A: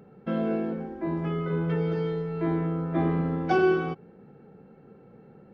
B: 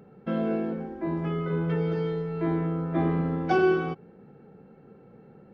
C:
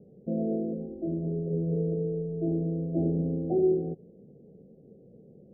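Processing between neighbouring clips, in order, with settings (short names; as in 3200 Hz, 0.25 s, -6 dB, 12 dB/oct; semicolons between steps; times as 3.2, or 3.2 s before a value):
nothing audible
steep low-pass 660 Hz 72 dB/oct; gain -1.5 dB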